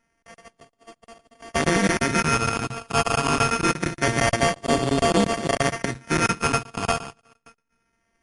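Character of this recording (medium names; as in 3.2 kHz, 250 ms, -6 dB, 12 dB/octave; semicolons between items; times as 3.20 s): a buzz of ramps at a fixed pitch in blocks of 64 samples; phasing stages 6, 0.25 Hz, lowest notch 520–1500 Hz; aliases and images of a low sample rate 3.9 kHz, jitter 0%; MP3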